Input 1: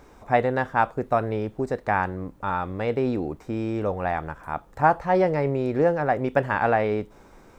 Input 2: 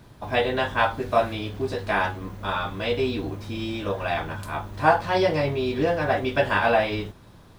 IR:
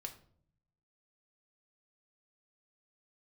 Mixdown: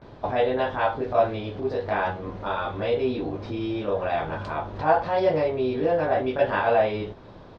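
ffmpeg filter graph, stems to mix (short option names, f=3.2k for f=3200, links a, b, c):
-filter_complex "[0:a]lowpass=1.8k,acompressor=threshold=-22dB:ratio=6,volume=-6.5dB,asplit=2[a][b];[1:a]equalizer=f=540:w=0.77:g=9.5,adelay=17,volume=0.5dB[c];[b]apad=whole_len=335213[d];[c][d]sidechaincompress=threshold=-38dB:ratio=8:attack=47:release=390[e];[a][e]amix=inputs=2:normalize=0,lowpass=f=5k:w=0.5412,lowpass=f=5k:w=1.3066"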